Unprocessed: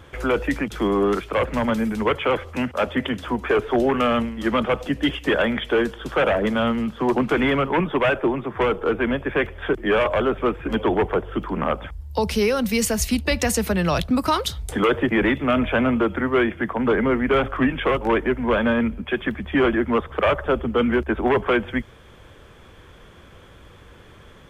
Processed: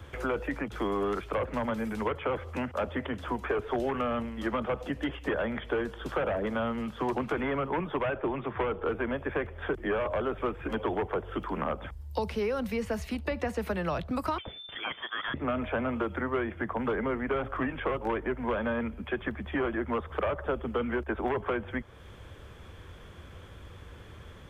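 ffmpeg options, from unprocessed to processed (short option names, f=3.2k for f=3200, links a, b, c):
-filter_complex "[0:a]asettb=1/sr,asplit=3[a][b][c];[a]atrim=end=8.064[d];[b]atrim=start=8.06:end=8.89,asetpts=PTS-STARTPTS,afade=t=in:d=0.004:c=qsin,afade=t=out:st=0.826:d=0.004:c=qsin,highshelf=f=4.6k:t=q:w=1.5:g=-11.5[e];[c]atrim=start=8.886[f];[d][e]acrossfade=d=0.004:c1=hsin:c2=qsin[g];[g][f]acrossfade=d=0.004:c1=qsin:c2=hsin,asettb=1/sr,asplit=3[h][i][j];[h]atrim=end=14.384[k];[i]atrim=start=14.38:end=15.34,asetpts=PTS-STARTPTS,afade=t=in:d=0.004:c=qsin,afade=t=out:st=0.956:d=0.004:c=qsin,lowpass=f=3.1k:t=q:w=0.5098,lowpass=f=3.1k:t=q:w=0.6013,lowpass=f=3.1k:t=q:w=0.9,lowpass=f=3.1k:t=q:w=2.563,afreqshift=-3600[l];[j]atrim=start=15.336[m];[k][l]acrossfade=d=0.004:c1=hsin:c2=qsin[n];[n][m]acrossfade=d=0.004:c1=qsin:c2=hsin,acrossover=split=3300[o][p];[p]acompressor=threshold=-42dB:ratio=4:attack=1:release=60[q];[o][q]amix=inputs=2:normalize=0,equalizer=f=80:t=o:w=1.1:g=7.5,acrossover=split=160|420|1600[r][s][t][u];[r]acompressor=threshold=-39dB:ratio=4[v];[s]acompressor=threshold=-34dB:ratio=4[w];[t]acompressor=threshold=-27dB:ratio=4[x];[u]acompressor=threshold=-42dB:ratio=4[y];[v][w][x][y]amix=inputs=4:normalize=0,volume=-3.5dB"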